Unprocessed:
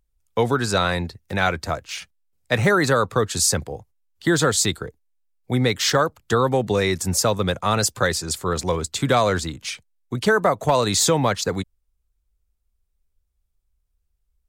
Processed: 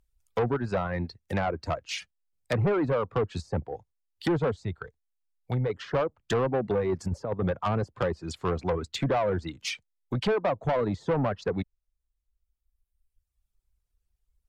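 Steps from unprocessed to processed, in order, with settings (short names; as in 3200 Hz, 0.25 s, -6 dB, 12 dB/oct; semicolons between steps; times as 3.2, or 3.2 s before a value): reverb removal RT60 1.5 s; treble ducked by the level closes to 780 Hz, closed at -18.5 dBFS; 4.56–5.7 bell 290 Hz -11 dB 1.3 oct; 6.89–7.6 negative-ratio compressor -24 dBFS, ratio -0.5; soft clip -20.5 dBFS, distortion -10 dB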